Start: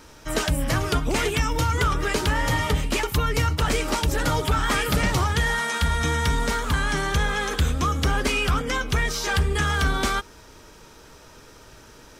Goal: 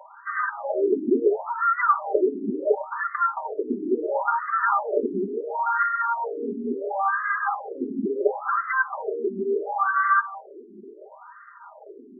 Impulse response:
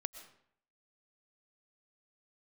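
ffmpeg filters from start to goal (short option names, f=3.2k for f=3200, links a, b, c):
-filter_complex "[0:a]lowpass=2k,asplit=3[a][b][c];[a]afade=t=out:st=7.48:d=0.02[d];[b]asubboost=boost=2:cutoff=220,afade=t=in:st=7.48:d=0.02,afade=t=out:st=8.08:d=0.02[e];[c]afade=t=in:st=8.08:d=0.02[f];[d][e][f]amix=inputs=3:normalize=0,asplit=2[g][h];[h]acompressor=threshold=-28dB:ratio=6,volume=-2dB[i];[g][i]amix=inputs=2:normalize=0,asoftclip=type=tanh:threshold=-7.5dB,aphaser=in_gain=1:out_gain=1:delay=4.1:decay=0.33:speed=1.2:type=sinusoidal,asplit=2[j][k];[1:a]atrim=start_sample=2205,highshelf=f=2.3k:g=-10,adelay=5[l];[k][l]afir=irnorm=-1:irlink=0,volume=5.5dB[m];[j][m]amix=inputs=2:normalize=0,afftfilt=real='re*between(b*sr/1024,290*pow(1500/290,0.5+0.5*sin(2*PI*0.72*pts/sr))/1.41,290*pow(1500/290,0.5+0.5*sin(2*PI*0.72*pts/sr))*1.41)':imag='im*between(b*sr/1024,290*pow(1500/290,0.5+0.5*sin(2*PI*0.72*pts/sr))/1.41,290*pow(1500/290,0.5+0.5*sin(2*PI*0.72*pts/sr))*1.41)':win_size=1024:overlap=0.75"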